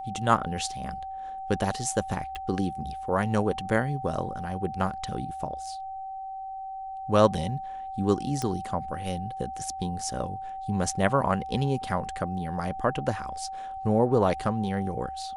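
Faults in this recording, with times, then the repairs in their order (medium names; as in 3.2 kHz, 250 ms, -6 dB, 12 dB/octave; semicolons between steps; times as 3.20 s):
whine 770 Hz -34 dBFS
2.35 s: pop -24 dBFS
8.42 s: pop -16 dBFS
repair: de-click; band-stop 770 Hz, Q 30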